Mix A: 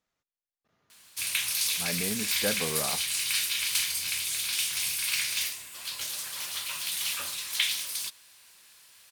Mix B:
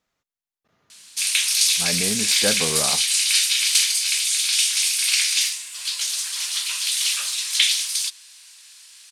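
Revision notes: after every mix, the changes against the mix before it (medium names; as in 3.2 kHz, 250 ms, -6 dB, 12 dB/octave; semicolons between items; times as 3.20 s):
speech +6.5 dB; background: add frequency weighting ITU-R 468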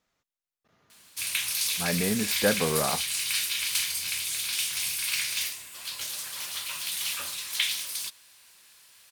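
background: remove frequency weighting ITU-R 468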